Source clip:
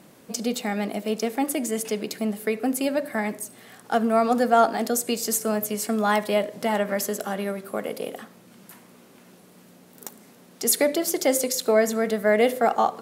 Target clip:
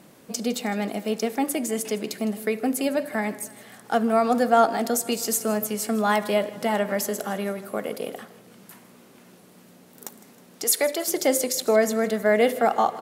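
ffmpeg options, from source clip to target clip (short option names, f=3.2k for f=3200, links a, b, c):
-filter_complex "[0:a]asettb=1/sr,asplit=3[a][b][c];[a]atrim=end=10.644[d];[b]atrim=start=10.64:end=11.08,asetpts=PTS-STARTPTS,afade=t=in:d=0.004:c=qsin,afade=t=out:st=0.436:d=0.004:c=qsin,highpass=460[e];[c]atrim=start=11.076[f];[d][e]acrossfade=d=0.004:c1=hsin:c2=qsin[g];[g][f]acrossfade=d=0.004:c1=qsin:c2=hsin,aecho=1:1:158|316|474|632|790:0.119|0.0642|0.0347|0.0187|0.0101"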